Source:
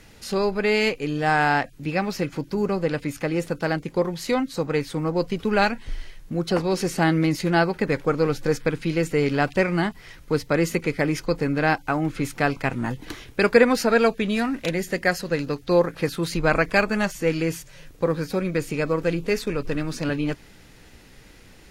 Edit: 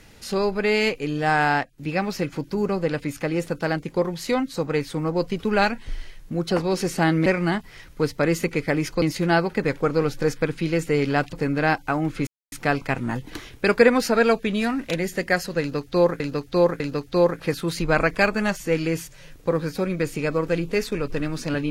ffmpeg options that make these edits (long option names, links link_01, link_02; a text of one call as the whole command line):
ffmpeg -i in.wav -filter_complex "[0:a]asplit=9[link_01][link_02][link_03][link_04][link_05][link_06][link_07][link_08][link_09];[link_01]atrim=end=1.64,asetpts=PTS-STARTPTS,afade=type=out:start_time=1.4:duration=0.24:curve=log:silence=0.266073[link_10];[link_02]atrim=start=1.64:end=1.78,asetpts=PTS-STARTPTS,volume=-11.5dB[link_11];[link_03]atrim=start=1.78:end=7.262,asetpts=PTS-STARTPTS,afade=type=in:duration=0.24:curve=log:silence=0.266073[link_12];[link_04]atrim=start=9.568:end=11.332[link_13];[link_05]atrim=start=7.258:end=9.572[link_14];[link_06]atrim=start=11.328:end=12.27,asetpts=PTS-STARTPTS,afade=type=out:start_time=0.938:duration=0.004:curve=hsin,apad=pad_dur=0.25[link_15];[link_07]atrim=start=12.27:end=15.952,asetpts=PTS-STARTPTS,afade=type=in:duration=0.004:curve=hsin[link_16];[link_08]atrim=start=15.348:end=15.952[link_17];[link_09]atrim=start=15.348[link_18];[link_10][link_11][link_12]concat=n=3:v=0:a=1[link_19];[link_19][link_13]acrossfade=duration=0.004:curve1=hsin:curve2=hsin[link_20];[link_20][link_14]acrossfade=duration=0.004:curve1=hsin:curve2=hsin[link_21];[link_15][link_16]concat=n=2:v=0:a=1[link_22];[link_21][link_22]acrossfade=duration=0.004:curve1=hsin:curve2=hsin[link_23];[link_23][link_17]acrossfade=duration=0.004:curve1=hsin:curve2=hsin[link_24];[link_24][link_18]acrossfade=duration=0.004:curve1=hsin:curve2=hsin" out.wav